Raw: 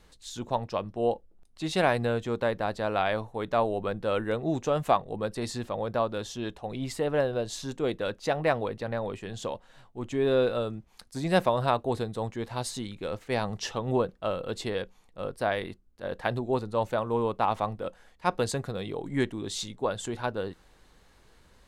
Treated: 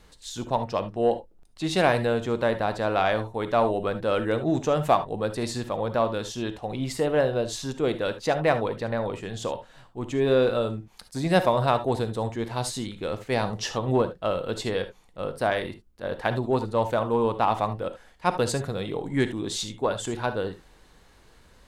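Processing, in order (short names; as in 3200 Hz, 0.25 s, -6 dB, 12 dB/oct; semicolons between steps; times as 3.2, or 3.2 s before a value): in parallel at -12 dB: overloaded stage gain 21 dB; on the sum: non-linear reverb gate 90 ms rising, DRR 10.5 dB; gain +1.5 dB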